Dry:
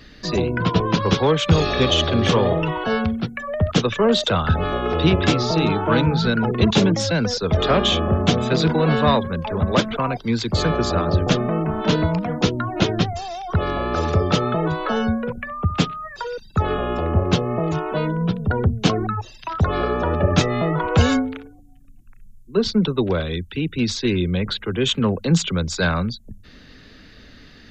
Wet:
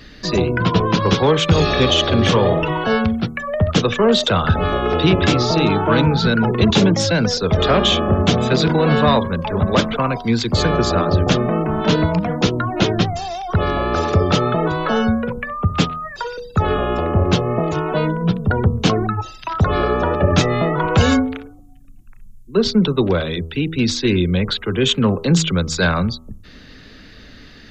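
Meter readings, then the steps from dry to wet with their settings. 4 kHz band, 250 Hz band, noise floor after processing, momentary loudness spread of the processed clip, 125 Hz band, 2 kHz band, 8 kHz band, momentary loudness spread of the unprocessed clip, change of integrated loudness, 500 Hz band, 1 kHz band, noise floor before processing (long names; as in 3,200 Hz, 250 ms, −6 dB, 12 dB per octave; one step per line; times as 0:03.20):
+3.5 dB, +3.0 dB, −41 dBFS, 7 LU, +2.5 dB, +3.5 dB, can't be measured, 7 LU, +3.0 dB, +3.0 dB, +3.5 dB, −45 dBFS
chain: hum removal 80.77 Hz, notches 16
in parallel at −1 dB: brickwall limiter −10.5 dBFS, peak gain reduction 7.5 dB
on the sum: level −1.5 dB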